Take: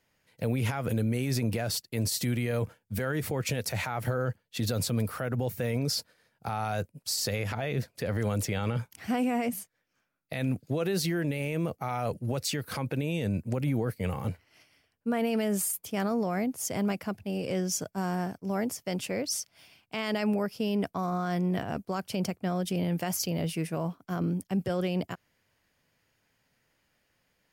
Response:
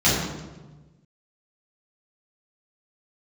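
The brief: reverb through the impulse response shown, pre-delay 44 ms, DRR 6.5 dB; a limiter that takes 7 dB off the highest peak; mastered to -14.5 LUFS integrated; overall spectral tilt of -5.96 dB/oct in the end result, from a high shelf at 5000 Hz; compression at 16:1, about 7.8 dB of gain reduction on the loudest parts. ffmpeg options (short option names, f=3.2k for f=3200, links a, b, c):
-filter_complex "[0:a]highshelf=f=5k:g=-7,acompressor=threshold=-32dB:ratio=16,alimiter=level_in=4.5dB:limit=-24dB:level=0:latency=1,volume=-4.5dB,asplit=2[a][b];[1:a]atrim=start_sample=2205,adelay=44[c];[b][c]afir=irnorm=-1:irlink=0,volume=-25.5dB[d];[a][d]amix=inputs=2:normalize=0,volume=21dB"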